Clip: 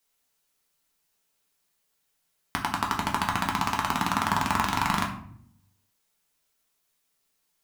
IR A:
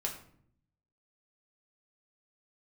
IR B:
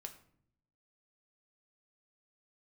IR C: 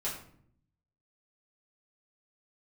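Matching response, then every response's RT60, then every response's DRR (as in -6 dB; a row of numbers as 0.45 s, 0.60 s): A; 0.60 s, 0.65 s, 0.60 s; -0.5 dB, 5.0 dB, -8.0 dB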